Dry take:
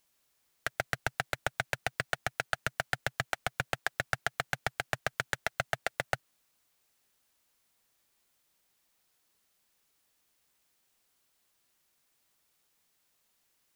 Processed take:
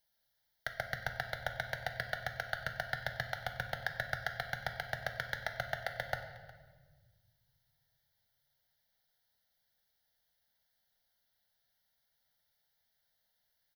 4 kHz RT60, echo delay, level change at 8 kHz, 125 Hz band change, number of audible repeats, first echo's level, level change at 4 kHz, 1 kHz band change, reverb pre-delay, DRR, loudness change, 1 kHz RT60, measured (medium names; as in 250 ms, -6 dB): 1.2 s, 361 ms, -12.5 dB, -3.0 dB, 1, -21.0 dB, -4.5 dB, -4.5 dB, 10 ms, 6.0 dB, -4.0 dB, 1.2 s